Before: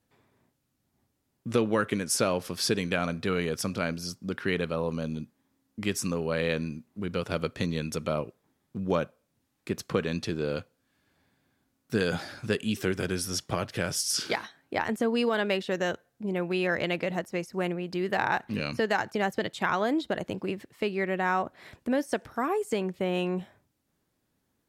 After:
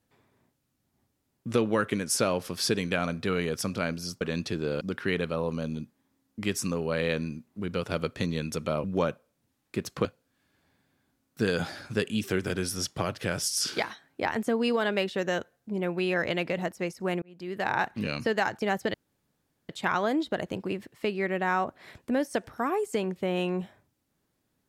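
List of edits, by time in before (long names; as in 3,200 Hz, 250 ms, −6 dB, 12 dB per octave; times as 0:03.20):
0:08.24–0:08.77: remove
0:09.98–0:10.58: move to 0:04.21
0:17.75–0:18.30: fade in linear
0:19.47: splice in room tone 0.75 s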